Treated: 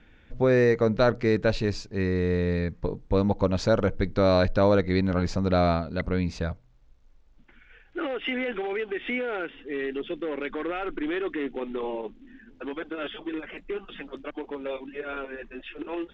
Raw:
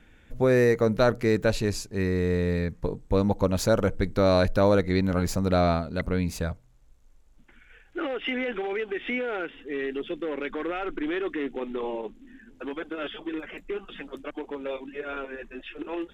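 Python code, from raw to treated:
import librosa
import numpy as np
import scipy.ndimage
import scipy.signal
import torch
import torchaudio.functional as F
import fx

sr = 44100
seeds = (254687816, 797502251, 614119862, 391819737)

y = scipy.signal.sosfilt(scipy.signal.butter(4, 5400.0, 'lowpass', fs=sr, output='sos'), x)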